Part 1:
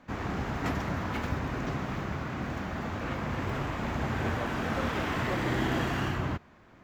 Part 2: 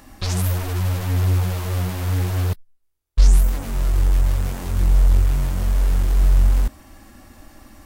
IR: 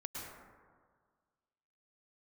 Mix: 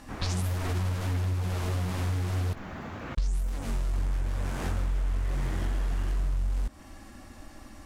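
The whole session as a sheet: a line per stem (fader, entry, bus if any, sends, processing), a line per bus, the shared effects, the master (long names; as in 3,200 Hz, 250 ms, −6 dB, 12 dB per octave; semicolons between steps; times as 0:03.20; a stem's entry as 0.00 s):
−4.5 dB, 0.00 s, muted 0:03.15–0:03.93, no send, no processing
−2.0 dB, 0.00 s, no send, low-pass filter 10,000 Hz 12 dB per octave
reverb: not used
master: downward compressor 6 to 1, threshold −26 dBFS, peak gain reduction 15 dB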